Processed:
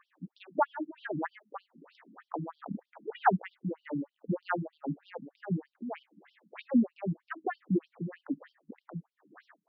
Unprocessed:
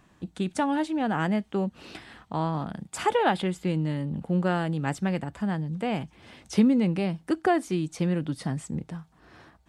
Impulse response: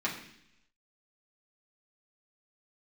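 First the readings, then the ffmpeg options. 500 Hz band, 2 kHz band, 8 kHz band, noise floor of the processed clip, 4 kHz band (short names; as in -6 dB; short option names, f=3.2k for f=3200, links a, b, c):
-8.5 dB, -6.5 dB, under -35 dB, under -85 dBFS, -17.5 dB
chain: -af "tremolo=f=1.8:d=0.69,highshelf=f=2.3k:t=q:w=1.5:g=-9,afftfilt=real='re*between(b*sr/1024,210*pow(4200/210,0.5+0.5*sin(2*PI*3.2*pts/sr))/1.41,210*pow(4200/210,0.5+0.5*sin(2*PI*3.2*pts/sr))*1.41)':imag='im*between(b*sr/1024,210*pow(4200/210,0.5+0.5*sin(2*PI*3.2*pts/sr))/1.41,210*pow(4200/210,0.5+0.5*sin(2*PI*3.2*pts/sr))*1.41)':win_size=1024:overlap=0.75,volume=4dB"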